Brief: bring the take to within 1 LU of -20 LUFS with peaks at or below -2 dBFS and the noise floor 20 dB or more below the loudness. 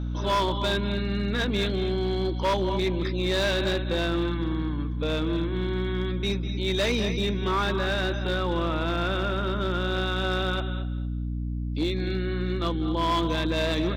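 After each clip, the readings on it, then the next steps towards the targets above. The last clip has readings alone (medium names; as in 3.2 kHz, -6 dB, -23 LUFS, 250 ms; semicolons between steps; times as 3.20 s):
clipped samples 2.6%; clipping level -19.5 dBFS; hum 60 Hz; highest harmonic 300 Hz; hum level -27 dBFS; loudness -27.0 LUFS; peak level -19.5 dBFS; loudness target -20.0 LUFS
-> clip repair -19.5 dBFS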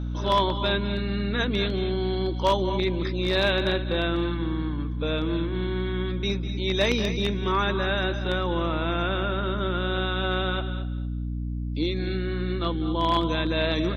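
clipped samples 0.0%; hum 60 Hz; highest harmonic 300 Hz; hum level -27 dBFS
-> de-hum 60 Hz, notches 5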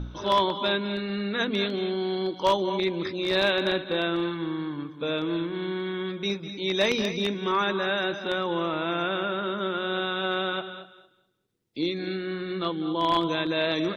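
hum not found; loudness -27.0 LUFS; peak level -10.0 dBFS; loudness target -20.0 LUFS
-> trim +7 dB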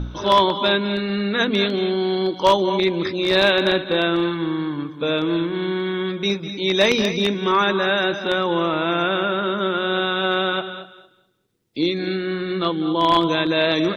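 loudness -20.0 LUFS; peak level -3.0 dBFS; noise floor -50 dBFS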